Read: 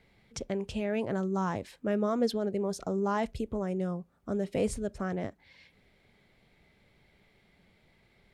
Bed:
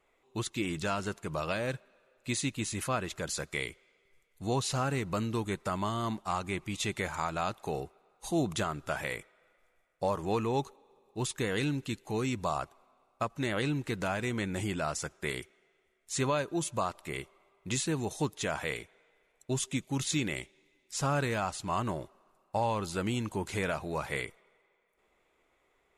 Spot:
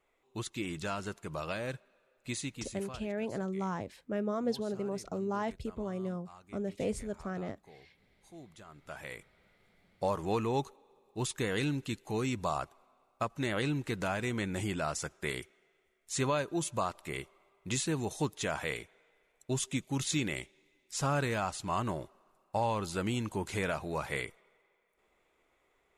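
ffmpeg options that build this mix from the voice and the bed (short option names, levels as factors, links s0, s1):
-filter_complex "[0:a]adelay=2250,volume=0.596[s0];[1:a]volume=6.68,afade=t=out:st=2.26:d=0.81:silence=0.133352,afade=t=in:st=8.64:d=1.2:silence=0.0944061[s1];[s0][s1]amix=inputs=2:normalize=0"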